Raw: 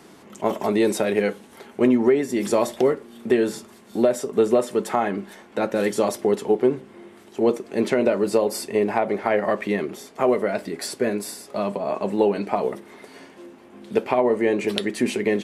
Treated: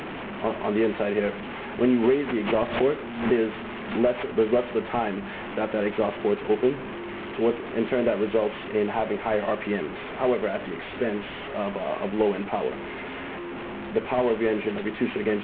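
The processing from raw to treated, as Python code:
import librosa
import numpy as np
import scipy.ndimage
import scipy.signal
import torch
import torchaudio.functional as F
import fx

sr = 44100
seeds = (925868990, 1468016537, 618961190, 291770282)

y = fx.delta_mod(x, sr, bps=16000, step_db=-25.0)
y = fx.pre_swell(y, sr, db_per_s=97.0, at=(1.89, 4.26))
y = y * 10.0 ** (-3.5 / 20.0)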